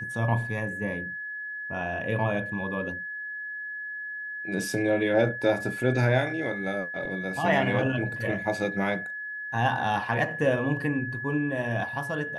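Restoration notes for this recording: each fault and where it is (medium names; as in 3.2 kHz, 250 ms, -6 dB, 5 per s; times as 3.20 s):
whine 1.7 kHz -33 dBFS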